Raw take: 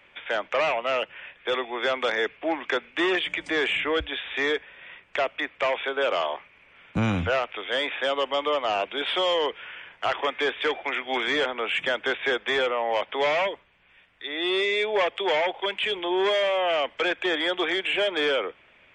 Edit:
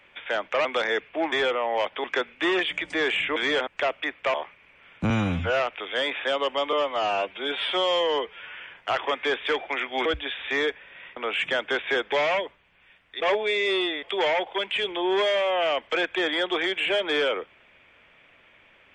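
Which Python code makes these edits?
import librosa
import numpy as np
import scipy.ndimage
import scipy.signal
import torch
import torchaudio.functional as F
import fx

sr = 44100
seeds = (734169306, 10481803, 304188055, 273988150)

y = fx.edit(x, sr, fx.cut(start_s=0.65, length_s=1.28),
    fx.swap(start_s=3.92, length_s=1.11, other_s=11.21, other_length_s=0.31),
    fx.cut(start_s=5.7, length_s=0.57),
    fx.stretch_span(start_s=7.03, length_s=0.33, factor=1.5),
    fx.stretch_span(start_s=8.49, length_s=1.22, factor=1.5),
    fx.move(start_s=12.48, length_s=0.72, to_s=2.6),
    fx.reverse_span(start_s=14.28, length_s=0.82), tone=tone)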